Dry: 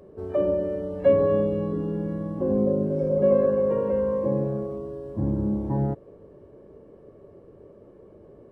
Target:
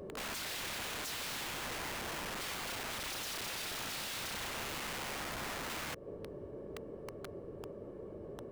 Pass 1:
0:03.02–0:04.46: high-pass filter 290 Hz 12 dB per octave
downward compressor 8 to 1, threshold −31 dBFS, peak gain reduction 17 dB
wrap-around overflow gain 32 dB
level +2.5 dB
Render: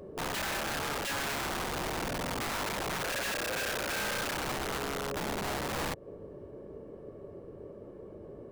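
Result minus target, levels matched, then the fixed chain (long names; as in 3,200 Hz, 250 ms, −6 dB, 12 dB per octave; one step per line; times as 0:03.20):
wrap-around overflow: distortion −7 dB
0:03.02–0:04.46: high-pass filter 290 Hz 12 dB per octave
downward compressor 8 to 1, threshold −31 dBFS, peak gain reduction 17 dB
wrap-around overflow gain 38.5 dB
level +2.5 dB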